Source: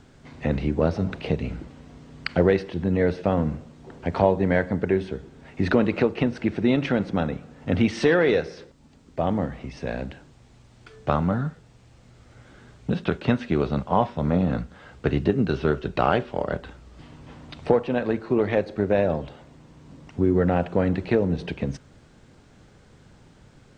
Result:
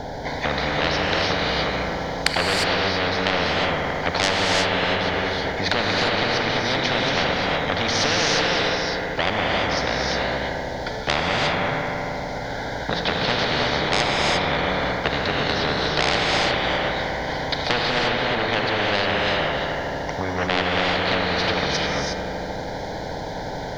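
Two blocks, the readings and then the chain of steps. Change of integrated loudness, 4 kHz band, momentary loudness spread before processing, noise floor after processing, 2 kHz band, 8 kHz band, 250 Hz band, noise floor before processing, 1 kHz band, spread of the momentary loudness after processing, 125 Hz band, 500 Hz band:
+2.5 dB, +19.5 dB, 13 LU, −30 dBFS, +11.5 dB, can't be measured, −4.0 dB, −53 dBFS, +8.0 dB, 8 LU, −2.0 dB, +0.5 dB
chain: flat-topped bell 530 Hz +14.5 dB
in parallel at −2 dB: downward compressor, threshold −19 dBFS, peak gain reduction 18 dB
on the sum: phaser with its sweep stopped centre 1,800 Hz, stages 8
soft clipping −7.5 dBFS, distortion −10 dB
on a send: bucket-brigade delay 77 ms, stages 2,048, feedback 79%, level −13 dB
on the sum: reverb whose tail is shaped and stops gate 380 ms rising, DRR −2 dB
every bin compressed towards the loudest bin 4 to 1
level −4 dB

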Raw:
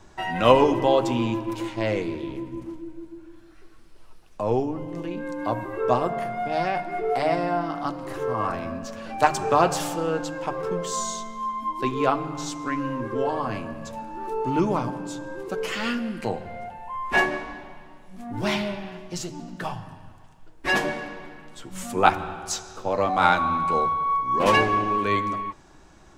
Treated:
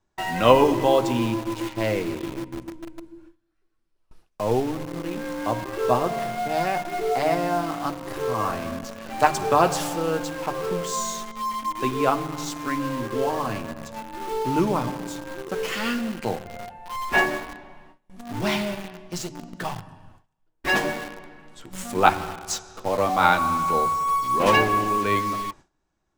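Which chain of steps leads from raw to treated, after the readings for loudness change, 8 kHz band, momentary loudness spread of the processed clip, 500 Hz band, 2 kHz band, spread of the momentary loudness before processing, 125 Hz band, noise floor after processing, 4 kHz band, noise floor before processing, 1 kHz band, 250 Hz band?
+1.0 dB, +2.0 dB, 16 LU, +0.5 dB, +1.0 dB, 15 LU, +0.5 dB, −71 dBFS, +1.5 dB, −49 dBFS, +0.5 dB, +0.5 dB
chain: noise gate with hold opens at −35 dBFS
in parallel at −5.5 dB: bit reduction 5 bits
on the sum: level −3 dB

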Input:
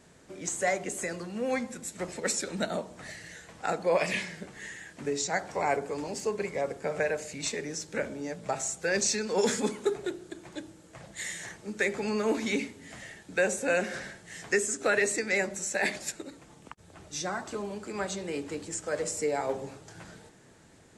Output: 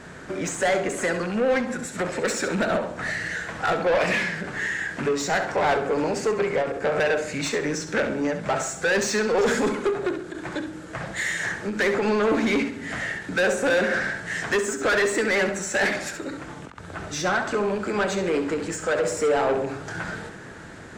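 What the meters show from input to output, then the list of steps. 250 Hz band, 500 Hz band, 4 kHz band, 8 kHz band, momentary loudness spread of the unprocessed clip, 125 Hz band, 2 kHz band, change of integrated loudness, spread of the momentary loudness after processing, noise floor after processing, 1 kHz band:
+8.0 dB, +7.5 dB, +6.0 dB, +1.0 dB, 17 LU, +8.5 dB, +8.5 dB, +6.5 dB, 11 LU, −40 dBFS, +8.0 dB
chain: loose part that buzzes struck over −40 dBFS, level −37 dBFS
dynamic equaliser 470 Hz, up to +5 dB, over −38 dBFS, Q 0.71
in parallel at +2.5 dB: downward compressor, threshold −42 dBFS, peak gain reduction 23 dB
on the sum: parametric band 1,500 Hz +8.5 dB 0.69 octaves
soft clipping −25.5 dBFS, distortion −6 dB
low-pass filter 3,400 Hz 6 dB per octave
flutter between parallel walls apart 11.5 metres, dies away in 0.42 s
every ending faded ahead of time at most 110 dB per second
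level +7.5 dB

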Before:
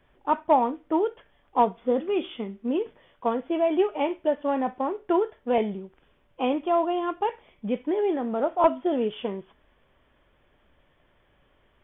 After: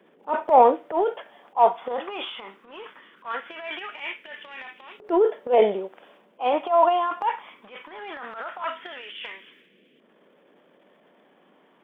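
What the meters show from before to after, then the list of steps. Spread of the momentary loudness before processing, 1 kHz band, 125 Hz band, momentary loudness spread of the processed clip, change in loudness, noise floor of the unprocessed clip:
9 LU, +3.5 dB, can't be measured, 20 LU, +2.5 dB, −65 dBFS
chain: auto-filter high-pass saw up 0.2 Hz 410–2,700 Hz
transient designer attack −11 dB, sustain +9 dB
noise in a band 180–530 Hz −64 dBFS
level +2 dB

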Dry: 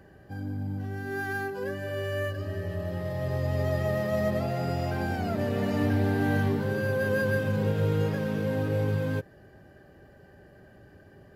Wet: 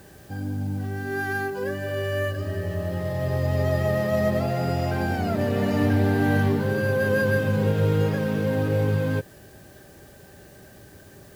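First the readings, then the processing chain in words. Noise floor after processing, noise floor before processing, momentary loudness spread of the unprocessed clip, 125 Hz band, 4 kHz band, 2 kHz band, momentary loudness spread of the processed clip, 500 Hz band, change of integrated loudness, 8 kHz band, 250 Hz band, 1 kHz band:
−48 dBFS, −54 dBFS, 8 LU, +4.5 dB, +4.5 dB, +4.5 dB, 8 LU, +4.5 dB, +4.5 dB, +6.0 dB, +4.5 dB, +4.5 dB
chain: bit-depth reduction 10 bits, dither triangular
level +4.5 dB

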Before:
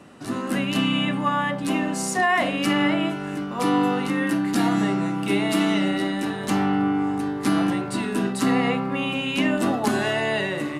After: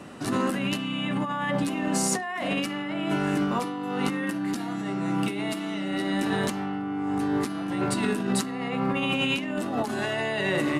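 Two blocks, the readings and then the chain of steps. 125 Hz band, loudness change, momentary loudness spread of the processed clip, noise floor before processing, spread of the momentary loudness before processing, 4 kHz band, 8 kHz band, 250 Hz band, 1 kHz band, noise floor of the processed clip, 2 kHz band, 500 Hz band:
−3.0 dB, −4.5 dB, 5 LU, −31 dBFS, 5 LU, −4.0 dB, 0.0 dB, −5.0 dB, −5.5 dB, −32 dBFS, −4.5 dB, −3.5 dB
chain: compressor whose output falls as the input rises −28 dBFS, ratio −1

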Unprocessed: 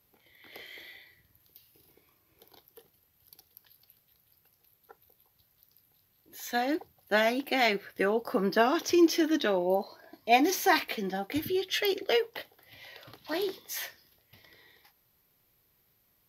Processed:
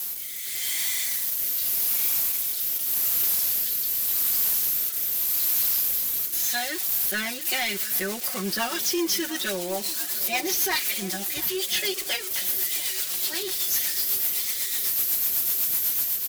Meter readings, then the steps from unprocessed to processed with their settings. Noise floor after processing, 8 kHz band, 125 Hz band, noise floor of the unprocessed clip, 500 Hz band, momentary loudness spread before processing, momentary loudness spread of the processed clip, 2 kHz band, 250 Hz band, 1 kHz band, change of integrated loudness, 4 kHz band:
−32 dBFS, +18.0 dB, +1.0 dB, −70 dBFS, −5.5 dB, 18 LU, 6 LU, +2.0 dB, −4.5 dB, −5.0 dB, +5.0 dB, +8.0 dB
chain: spike at every zero crossing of −24.5 dBFS
guitar amp tone stack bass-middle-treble 5-5-5
comb filter 5.4 ms, depth 95%
leveller curve on the samples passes 2
automatic gain control gain up to 7 dB
bit reduction 7 bits
rotating-speaker cabinet horn 0.85 Hz, later 8 Hz, at 0:07.23
soft clipping −19 dBFS, distortion −15 dB
tape delay 697 ms, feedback 72%, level −15 dB

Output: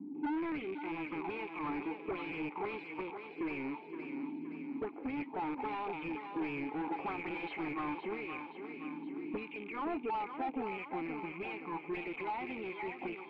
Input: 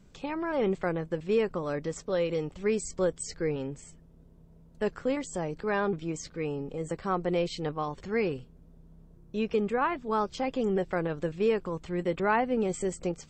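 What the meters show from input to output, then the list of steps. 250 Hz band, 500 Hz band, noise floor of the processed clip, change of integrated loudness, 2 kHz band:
−6.0 dB, −13.5 dB, −49 dBFS, −9.0 dB, −5.0 dB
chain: loose part that buzzes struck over −43 dBFS, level −32 dBFS
gain on a spectral selection 0:09.44–0:11.89, 200–2,000 Hz −7 dB
high-shelf EQ 2,600 Hz −9.5 dB
notch filter 490 Hz, Q 12
harmonic and percussive parts rebalanced percussive −13 dB
in parallel at −5.5 dB: soft clipping −27 dBFS, distortion −13 dB
on the sum: rotating-speaker cabinet horn 0.65 Hz, later 8 Hz, at 0:11.28
envelope filter 240–3,900 Hz, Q 5.2, up, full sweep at −26.5 dBFS
formant filter u
mid-hump overdrive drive 35 dB, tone 2,300 Hz, clips at −44 dBFS
high-frequency loss of the air 460 metres
on a send: feedback echo with a high-pass in the loop 520 ms, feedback 55%, high-pass 230 Hz, level −7 dB
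on the sum: level +17 dB

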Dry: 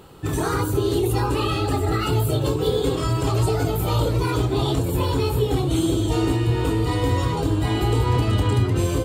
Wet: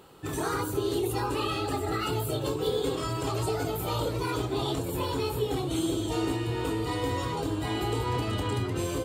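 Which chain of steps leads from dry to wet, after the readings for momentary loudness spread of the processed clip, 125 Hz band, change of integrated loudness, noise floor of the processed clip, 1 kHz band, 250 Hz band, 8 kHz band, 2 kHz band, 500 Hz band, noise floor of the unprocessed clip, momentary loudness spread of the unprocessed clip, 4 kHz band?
2 LU, −12.0 dB, −8.0 dB, −33 dBFS, −5.5 dB, −7.5 dB, −5.0 dB, −5.0 dB, −6.5 dB, −25 dBFS, 2 LU, −5.0 dB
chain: low-shelf EQ 160 Hz −10.5 dB
level −5 dB

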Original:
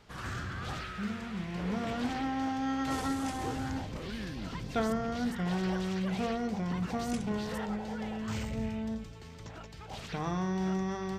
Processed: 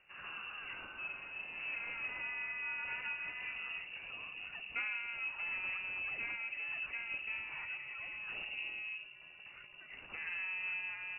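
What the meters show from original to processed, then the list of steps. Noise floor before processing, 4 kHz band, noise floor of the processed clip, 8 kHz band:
−47 dBFS, −4.5 dB, −55 dBFS, below −30 dB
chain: flanger 1.4 Hz, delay 1.3 ms, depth 4.8 ms, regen −88%
voice inversion scrambler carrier 2,800 Hz
level −4 dB

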